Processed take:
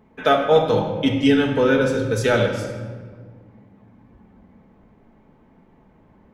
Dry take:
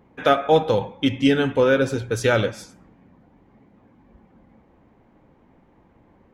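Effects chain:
rectangular room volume 1,800 cubic metres, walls mixed, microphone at 1.5 metres
level −1 dB

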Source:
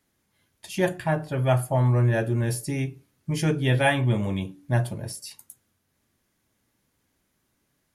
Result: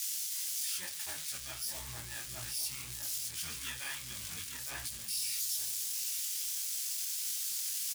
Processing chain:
spike at every zero crossing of −21.5 dBFS
pitch-shifted copies added −12 semitones 0 dB
high-pass filter 57 Hz
tilt shelving filter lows −9.5 dB, about 860 Hz
feedback echo with a low-pass in the loop 862 ms, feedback 23%, low-pass 1,100 Hz, level −3 dB
downward compressor, threshold −17 dBFS, peak gain reduction 7.5 dB
guitar amp tone stack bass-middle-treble 5-5-5
brickwall limiter −20.5 dBFS, peak gain reduction 9 dB
micro pitch shift up and down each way 57 cents
level −2 dB

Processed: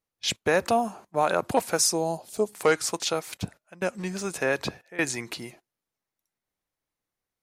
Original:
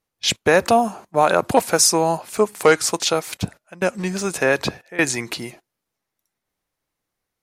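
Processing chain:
0:01.93–0:02.53: flat-topped bell 1,600 Hz −11 dB
level −7.5 dB

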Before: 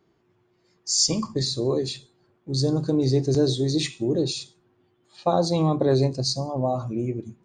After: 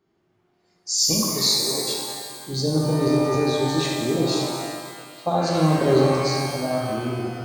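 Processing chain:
shaped tremolo saw up 0.65 Hz, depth 50%
0:01.22–0:01.93: spectral tilt +3 dB per octave
reverb with rising layers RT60 1.9 s, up +12 semitones, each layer −8 dB, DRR −2 dB

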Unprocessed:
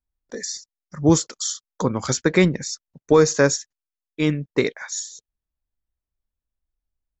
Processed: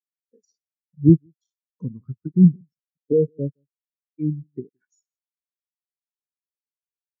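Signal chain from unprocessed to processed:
treble cut that deepens with the level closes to 450 Hz, closed at −15 dBFS
bass and treble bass +5 dB, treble +2 dB
in parallel at −1 dB: downward compressor, threshold −30 dBFS, peak gain reduction 19.5 dB
on the sum: dead-zone distortion −37 dBFS
single-tap delay 167 ms −17 dB
auto-filter notch saw down 0.41 Hz 480–2,700 Hz
every bin expanded away from the loudest bin 2.5 to 1

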